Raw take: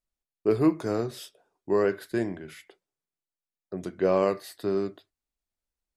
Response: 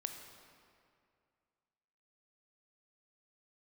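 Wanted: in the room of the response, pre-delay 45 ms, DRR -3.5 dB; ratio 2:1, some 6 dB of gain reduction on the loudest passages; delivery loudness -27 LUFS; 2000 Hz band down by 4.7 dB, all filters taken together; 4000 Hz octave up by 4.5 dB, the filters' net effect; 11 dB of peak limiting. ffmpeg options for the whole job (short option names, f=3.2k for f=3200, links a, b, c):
-filter_complex "[0:a]equalizer=f=2k:t=o:g=-8,equalizer=f=4k:t=o:g=7.5,acompressor=threshold=-28dB:ratio=2,alimiter=level_in=3dB:limit=-24dB:level=0:latency=1,volume=-3dB,asplit=2[a][b];[1:a]atrim=start_sample=2205,adelay=45[c];[b][c]afir=irnorm=-1:irlink=0,volume=5dB[d];[a][d]amix=inputs=2:normalize=0,volume=7dB"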